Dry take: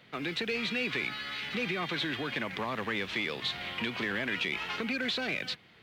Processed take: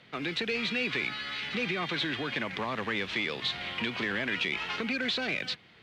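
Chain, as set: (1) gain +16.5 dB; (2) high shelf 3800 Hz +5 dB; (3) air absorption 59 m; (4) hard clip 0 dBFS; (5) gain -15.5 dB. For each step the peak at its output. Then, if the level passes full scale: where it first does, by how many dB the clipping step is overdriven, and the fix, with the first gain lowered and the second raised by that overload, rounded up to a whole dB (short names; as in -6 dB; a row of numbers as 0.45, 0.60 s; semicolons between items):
-3.0, -1.5, -2.5, -2.5, -18.0 dBFS; no overload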